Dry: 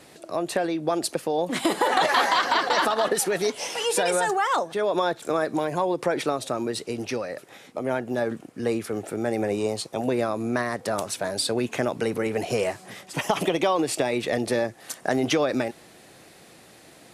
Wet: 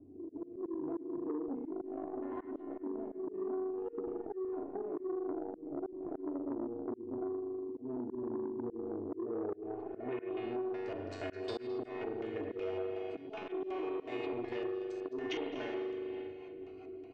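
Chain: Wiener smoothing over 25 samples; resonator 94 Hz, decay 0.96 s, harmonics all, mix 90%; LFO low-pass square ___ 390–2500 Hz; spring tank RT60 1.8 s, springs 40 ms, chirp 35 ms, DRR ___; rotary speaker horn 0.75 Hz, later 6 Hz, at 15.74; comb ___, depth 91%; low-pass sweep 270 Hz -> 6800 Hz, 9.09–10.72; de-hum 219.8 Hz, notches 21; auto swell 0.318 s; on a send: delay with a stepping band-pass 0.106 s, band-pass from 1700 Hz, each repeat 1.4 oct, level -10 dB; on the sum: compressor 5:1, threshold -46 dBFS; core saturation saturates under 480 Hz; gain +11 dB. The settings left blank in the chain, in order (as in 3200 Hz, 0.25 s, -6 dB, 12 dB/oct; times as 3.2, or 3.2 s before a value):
2.7 Hz, 4.5 dB, 2.8 ms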